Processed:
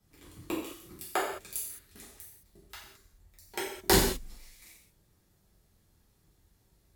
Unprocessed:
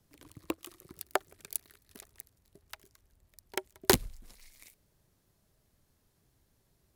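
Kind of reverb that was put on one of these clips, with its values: non-linear reverb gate 0.24 s falling, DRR -7.5 dB; gain -5.5 dB

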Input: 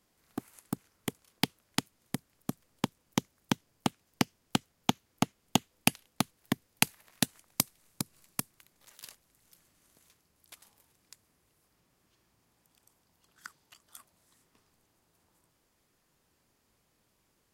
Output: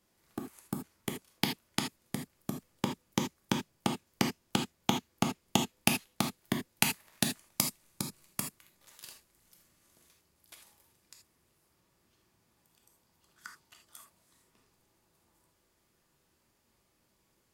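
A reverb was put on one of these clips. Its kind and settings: non-linear reverb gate 0.1 s flat, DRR 2 dB; gain -2 dB

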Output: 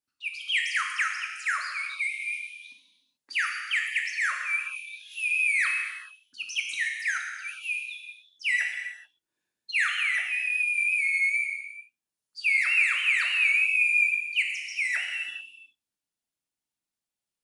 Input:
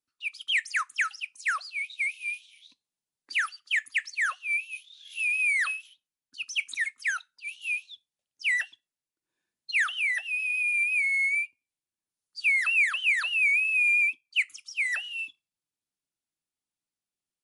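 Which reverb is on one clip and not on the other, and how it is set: non-linear reverb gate 0.46 s falling, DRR 0.5 dB; gain -1.5 dB

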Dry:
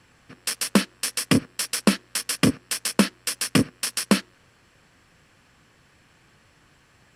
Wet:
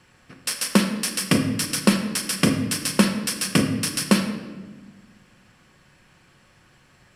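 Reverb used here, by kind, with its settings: shoebox room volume 920 m³, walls mixed, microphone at 0.98 m

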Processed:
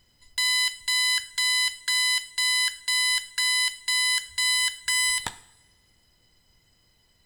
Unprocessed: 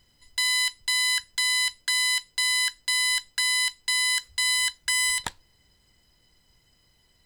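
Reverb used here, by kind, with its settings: two-slope reverb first 0.61 s, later 1.8 s, from -19 dB, DRR 12 dB

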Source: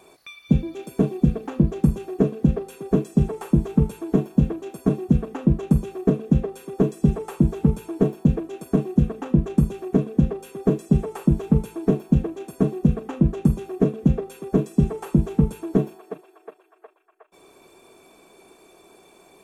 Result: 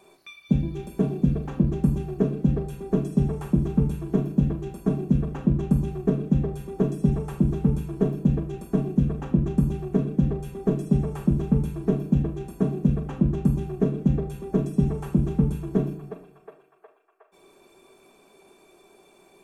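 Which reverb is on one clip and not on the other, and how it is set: shoebox room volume 890 m³, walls furnished, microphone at 1.2 m; gain -5 dB

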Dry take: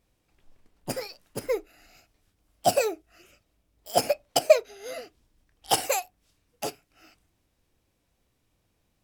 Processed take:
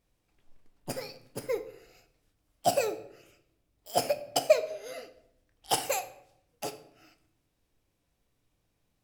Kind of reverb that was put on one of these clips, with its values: shoebox room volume 170 m³, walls mixed, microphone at 0.34 m; gain -4.5 dB

